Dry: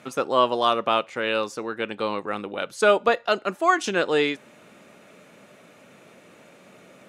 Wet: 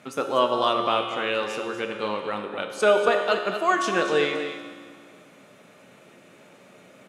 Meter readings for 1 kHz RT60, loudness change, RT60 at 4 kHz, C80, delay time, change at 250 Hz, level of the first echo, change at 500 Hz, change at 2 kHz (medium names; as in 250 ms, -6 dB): 1.8 s, -0.5 dB, 1.7 s, 5.0 dB, 239 ms, -1.0 dB, -9.5 dB, 0.0 dB, -0.5 dB